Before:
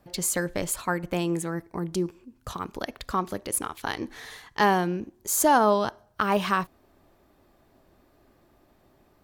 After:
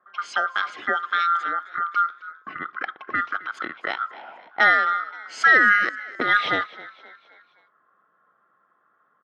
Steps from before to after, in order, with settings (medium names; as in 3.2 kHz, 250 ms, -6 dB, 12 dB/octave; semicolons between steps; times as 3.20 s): split-band scrambler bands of 1 kHz; level-controlled noise filter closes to 790 Hz, open at -20 dBFS; cabinet simulation 330–4800 Hz, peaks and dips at 340 Hz +3 dB, 800 Hz +3 dB, 1.4 kHz +4 dB, 2.2 kHz +5 dB, 3.2 kHz +6 dB; on a send: frequency-shifting echo 262 ms, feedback 48%, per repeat +50 Hz, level -19 dB; on the sum: trim +1.5 dB